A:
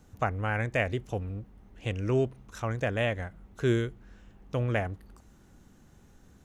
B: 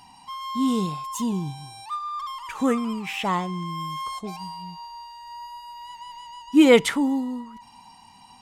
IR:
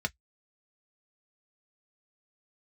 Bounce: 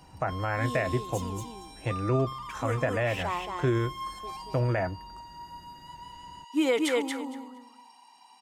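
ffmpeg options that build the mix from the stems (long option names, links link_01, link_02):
-filter_complex "[0:a]volume=0dB,asplit=2[link_01][link_02];[link_02]volume=-5.5dB[link_03];[1:a]highpass=frequency=310:width=0.5412,highpass=frequency=310:width=1.3066,volume=-7dB,asplit=2[link_04][link_05];[link_05]volume=-4.5dB[link_06];[2:a]atrim=start_sample=2205[link_07];[link_03][link_07]afir=irnorm=-1:irlink=0[link_08];[link_06]aecho=0:1:230|460|690:1|0.16|0.0256[link_09];[link_01][link_04][link_08][link_09]amix=inputs=4:normalize=0,alimiter=limit=-16.5dB:level=0:latency=1:release=59"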